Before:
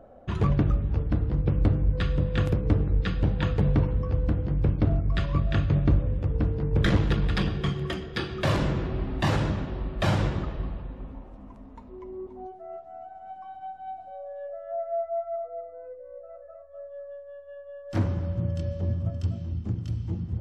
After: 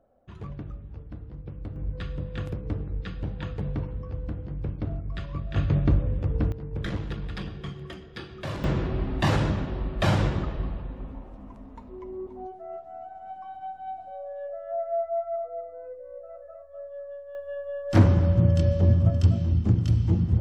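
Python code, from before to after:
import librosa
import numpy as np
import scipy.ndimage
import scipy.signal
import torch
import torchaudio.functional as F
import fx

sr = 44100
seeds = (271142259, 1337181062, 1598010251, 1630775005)

y = fx.gain(x, sr, db=fx.steps((0.0, -15.0), (1.76, -8.0), (5.56, 0.0), (6.52, -9.0), (8.64, 1.5), (17.35, 8.5)))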